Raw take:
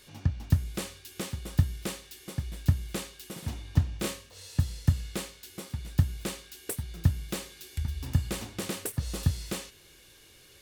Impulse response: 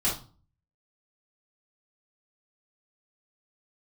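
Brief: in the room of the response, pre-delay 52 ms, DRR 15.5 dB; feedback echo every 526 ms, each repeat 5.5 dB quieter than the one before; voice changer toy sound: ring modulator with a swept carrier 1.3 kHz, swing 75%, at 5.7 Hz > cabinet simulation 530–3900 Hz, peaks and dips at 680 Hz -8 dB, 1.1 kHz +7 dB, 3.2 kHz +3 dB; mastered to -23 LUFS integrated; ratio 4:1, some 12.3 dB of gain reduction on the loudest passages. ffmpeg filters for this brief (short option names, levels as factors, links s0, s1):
-filter_complex "[0:a]acompressor=threshold=0.0251:ratio=4,aecho=1:1:526|1052|1578|2104|2630|3156|3682:0.531|0.281|0.149|0.079|0.0419|0.0222|0.0118,asplit=2[s0][s1];[1:a]atrim=start_sample=2205,adelay=52[s2];[s1][s2]afir=irnorm=-1:irlink=0,volume=0.0562[s3];[s0][s3]amix=inputs=2:normalize=0,aeval=exprs='val(0)*sin(2*PI*1300*n/s+1300*0.75/5.7*sin(2*PI*5.7*n/s))':c=same,highpass=530,equalizer=f=680:t=q:w=4:g=-8,equalizer=f=1100:t=q:w=4:g=7,equalizer=f=3200:t=q:w=4:g=3,lowpass=f=3900:w=0.5412,lowpass=f=3900:w=1.3066,volume=6.31"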